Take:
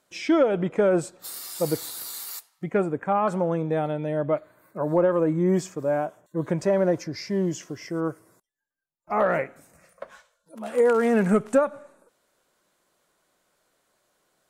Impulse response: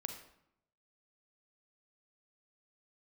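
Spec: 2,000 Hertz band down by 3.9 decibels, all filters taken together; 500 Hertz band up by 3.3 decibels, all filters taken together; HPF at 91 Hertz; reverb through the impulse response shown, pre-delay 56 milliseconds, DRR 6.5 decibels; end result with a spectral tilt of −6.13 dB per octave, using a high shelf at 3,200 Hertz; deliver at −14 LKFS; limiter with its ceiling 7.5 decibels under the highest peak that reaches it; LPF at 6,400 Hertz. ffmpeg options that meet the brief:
-filter_complex "[0:a]highpass=91,lowpass=6400,equalizer=frequency=500:width_type=o:gain=4,equalizer=frequency=2000:width_type=o:gain=-8.5,highshelf=frequency=3200:gain=9,alimiter=limit=-14.5dB:level=0:latency=1,asplit=2[link_01][link_02];[1:a]atrim=start_sample=2205,adelay=56[link_03];[link_02][link_03]afir=irnorm=-1:irlink=0,volume=-5dB[link_04];[link_01][link_04]amix=inputs=2:normalize=0,volume=10dB"

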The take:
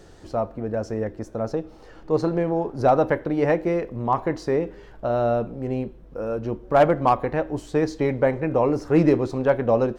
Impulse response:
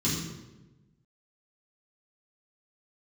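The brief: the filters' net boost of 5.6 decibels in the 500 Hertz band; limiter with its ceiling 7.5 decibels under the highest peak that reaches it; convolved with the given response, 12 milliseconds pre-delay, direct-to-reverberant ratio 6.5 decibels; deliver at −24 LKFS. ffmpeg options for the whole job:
-filter_complex "[0:a]equalizer=frequency=500:width_type=o:gain=6.5,alimiter=limit=-10dB:level=0:latency=1,asplit=2[link_01][link_02];[1:a]atrim=start_sample=2205,adelay=12[link_03];[link_02][link_03]afir=irnorm=-1:irlink=0,volume=-15dB[link_04];[link_01][link_04]amix=inputs=2:normalize=0,volume=-6.5dB"

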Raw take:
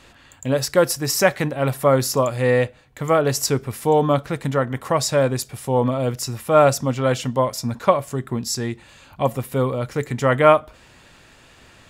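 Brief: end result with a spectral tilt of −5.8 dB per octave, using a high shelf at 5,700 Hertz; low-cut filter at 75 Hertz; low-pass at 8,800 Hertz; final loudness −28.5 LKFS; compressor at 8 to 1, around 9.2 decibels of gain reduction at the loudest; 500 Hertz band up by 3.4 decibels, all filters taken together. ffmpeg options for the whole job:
ffmpeg -i in.wav -af "highpass=75,lowpass=8800,equalizer=frequency=500:width_type=o:gain=4,highshelf=frequency=5700:gain=-9,acompressor=threshold=-16dB:ratio=8,volume=-5dB" out.wav

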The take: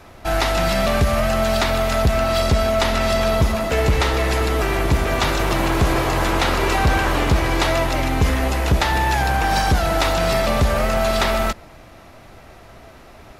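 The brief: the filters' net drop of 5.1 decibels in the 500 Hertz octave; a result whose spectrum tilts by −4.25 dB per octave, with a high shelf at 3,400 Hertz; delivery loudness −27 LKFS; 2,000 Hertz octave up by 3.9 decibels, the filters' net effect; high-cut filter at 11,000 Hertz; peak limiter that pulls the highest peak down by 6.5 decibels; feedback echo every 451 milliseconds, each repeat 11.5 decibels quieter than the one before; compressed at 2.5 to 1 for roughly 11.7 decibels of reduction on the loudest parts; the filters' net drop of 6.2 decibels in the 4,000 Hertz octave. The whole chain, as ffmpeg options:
ffmpeg -i in.wav -af "lowpass=11000,equalizer=frequency=500:width_type=o:gain=-8,equalizer=frequency=2000:width_type=o:gain=8.5,highshelf=frequency=3400:gain=-5,equalizer=frequency=4000:width_type=o:gain=-8,acompressor=threshold=-31dB:ratio=2.5,alimiter=limit=-23dB:level=0:latency=1,aecho=1:1:451|902|1353:0.266|0.0718|0.0194,volume=4.5dB" out.wav

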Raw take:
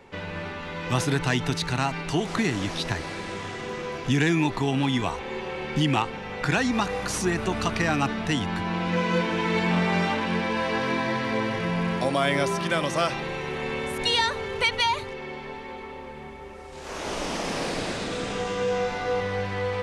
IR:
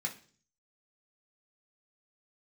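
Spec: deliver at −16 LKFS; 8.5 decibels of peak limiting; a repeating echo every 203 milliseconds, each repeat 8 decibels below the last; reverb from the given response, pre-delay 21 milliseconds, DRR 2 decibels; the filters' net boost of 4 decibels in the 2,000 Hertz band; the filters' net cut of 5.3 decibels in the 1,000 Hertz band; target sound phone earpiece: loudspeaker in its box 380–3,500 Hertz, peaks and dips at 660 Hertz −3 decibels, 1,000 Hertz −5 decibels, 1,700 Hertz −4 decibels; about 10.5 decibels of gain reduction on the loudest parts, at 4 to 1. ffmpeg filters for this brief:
-filter_complex "[0:a]equalizer=frequency=1000:width_type=o:gain=-5,equalizer=frequency=2000:width_type=o:gain=8.5,acompressor=threshold=-26dB:ratio=4,alimiter=limit=-21dB:level=0:latency=1,aecho=1:1:203|406|609|812|1015:0.398|0.159|0.0637|0.0255|0.0102,asplit=2[link_01][link_02];[1:a]atrim=start_sample=2205,adelay=21[link_03];[link_02][link_03]afir=irnorm=-1:irlink=0,volume=-4dB[link_04];[link_01][link_04]amix=inputs=2:normalize=0,highpass=380,equalizer=frequency=660:width_type=q:width=4:gain=-3,equalizer=frequency=1000:width_type=q:width=4:gain=-5,equalizer=frequency=1700:width_type=q:width=4:gain=-4,lowpass=frequency=3500:width=0.5412,lowpass=frequency=3500:width=1.3066,volume=14dB"

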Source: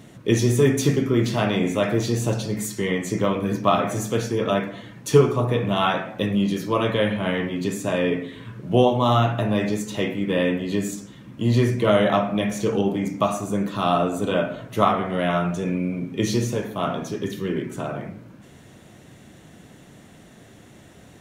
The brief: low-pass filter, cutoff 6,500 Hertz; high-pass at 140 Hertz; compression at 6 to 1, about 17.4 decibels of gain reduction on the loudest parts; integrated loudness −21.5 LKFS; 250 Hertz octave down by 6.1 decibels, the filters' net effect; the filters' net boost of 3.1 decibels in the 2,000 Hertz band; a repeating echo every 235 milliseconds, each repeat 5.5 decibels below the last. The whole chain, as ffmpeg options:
ffmpeg -i in.wav -af "highpass=140,lowpass=6500,equalizer=frequency=250:width_type=o:gain=-7.5,equalizer=frequency=2000:width_type=o:gain=4,acompressor=threshold=-32dB:ratio=6,aecho=1:1:235|470|705|940|1175|1410|1645:0.531|0.281|0.149|0.079|0.0419|0.0222|0.0118,volume=12.5dB" out.wav

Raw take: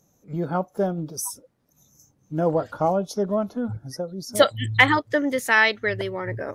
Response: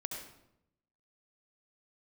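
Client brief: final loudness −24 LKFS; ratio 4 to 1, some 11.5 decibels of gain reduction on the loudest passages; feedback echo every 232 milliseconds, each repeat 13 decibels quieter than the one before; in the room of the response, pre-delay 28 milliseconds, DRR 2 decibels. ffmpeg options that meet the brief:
-filter_complex "[0:a]acompressor=threshold=-24dB:ratio=4,aecho=1:1:232|464|696:0.224|0.0493|0.0108,asplit=2[link_01][link_02];[1:a]atrim=start_sample=2205,adelay=28[link_03];[link_02][link_03]afir=irnorm=-1:irlink=0,volume=-2dB[link_04];[link_01][link_04]amix=inputs=2:normalize=0,volume=3dB"

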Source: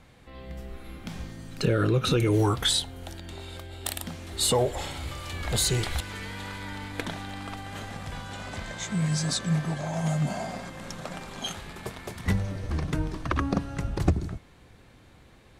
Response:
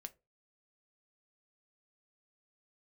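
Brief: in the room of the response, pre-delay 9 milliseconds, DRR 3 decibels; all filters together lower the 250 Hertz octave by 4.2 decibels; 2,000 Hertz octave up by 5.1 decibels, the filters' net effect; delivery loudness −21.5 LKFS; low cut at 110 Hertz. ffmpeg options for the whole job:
-filter_complex "[0:a]highpass=110,equalizer=frequency=250:width_type=o:gain=-6.5,equalizer=frequency=2000:width_type=o:gain=6.5,asplit=2[link_01][link_02];[1:a]atrim=start_sample=2205,adelay=9[link_03];[link_02][link_03]afir=irnorm=-1:irlink=0,volume=2.5dB[link_04];[link_01][link_04]amix=inputs=2:normalize=0,volume=6.5dB"

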